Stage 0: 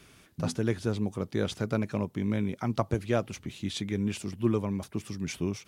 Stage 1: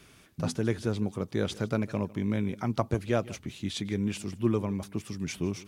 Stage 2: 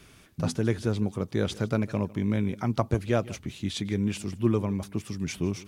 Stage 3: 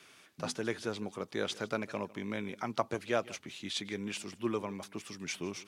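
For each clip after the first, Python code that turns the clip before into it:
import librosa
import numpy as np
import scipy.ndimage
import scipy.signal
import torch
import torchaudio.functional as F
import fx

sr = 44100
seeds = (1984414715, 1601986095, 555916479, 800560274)

y1 = x + 10.0 ** (-20.5 / 20.0) * np.pad(x, (int(153 * sr / 1000.0), 0))[:len(x)]
y2 = fx.low_shelf(y1, sr, hz=86.0, db=5.5)
y2 = F.gain(torch.from_numpy(y2), 1.5).numpy()
y3 = fx.weighting(y2, sr, curve='A')
y3 = F.gain(torch.from_numpy(y3), -2.0).numpy()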